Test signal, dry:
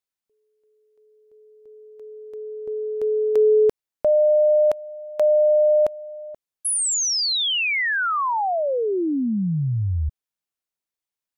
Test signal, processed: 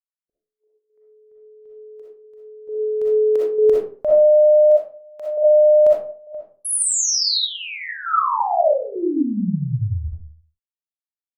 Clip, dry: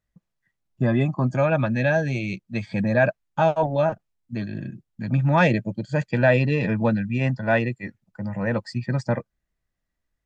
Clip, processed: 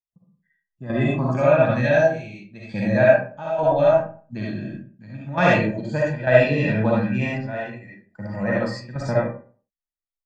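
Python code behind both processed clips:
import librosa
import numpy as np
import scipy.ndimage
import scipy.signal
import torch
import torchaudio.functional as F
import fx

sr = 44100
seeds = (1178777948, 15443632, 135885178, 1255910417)

y = fx.noise_reduce_blind(x, sr, reduce_db=27)
y = fx.step_gate(y, sr, bpm=67, pattern='xxx.xxxxx...', floor_db=-12.0, edge_ms=4.5)
y = fx.rev_freeverb(y, sr, rt60_s=0.43, hf_ratio=0.6, predelay_ms=20, drr_db=-5.5)
y = F.gain(torch.from_numpy(y), -3.0).numpy()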